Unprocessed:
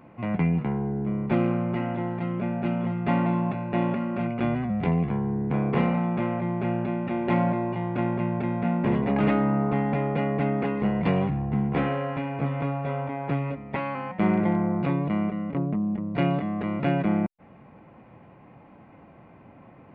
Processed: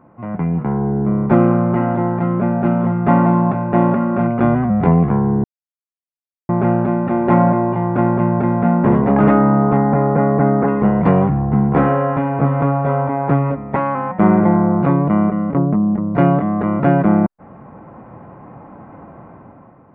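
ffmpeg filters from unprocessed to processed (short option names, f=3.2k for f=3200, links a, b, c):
-filter_complex "[0:a]asettb=1/sr,asplit=3[a][b][c];[a]atrim=end=9.774[d];[b]atrim=start=9.77:end=10.68,asetpts=PTS-STARTPTS,afade=t=in:d=0.004:c=qsin,afade=t=out:st=0.906:d=0.004:c=qsin,lowpass=f=2k:w=0.5412,lowpass=f=2k:w=1.3066[e];[c]atrim=start=10.676[f];[d][e]acrossfade=d=0.004:c1=hsin:c2=qsin[g];[g][f]acrossfade=d=0.004:c1=qsin:c2=hsin,asplit=3[h][i][j];[h]atrim=end=5.44,asetpts=PTS-STARTPTS,afade=t=out:st=5.436:d=0.004:c=hsin[k];[i]atrim=start=5.44:end=6.49,asetpts=PTS-STARTPTS,volume=0[l];[j]atrim=start=6.49,asetpts=PTS-STARTPTS,afade=t=in:d=0.004:c=hsin[m];[k][l][m]concat=n=3:v=0:a=1,highshelf=f=1.9k:t=q:w=1.5:g=-11.5,dynaudnorm=f=120:g=11:m=11dB,volume=1dB"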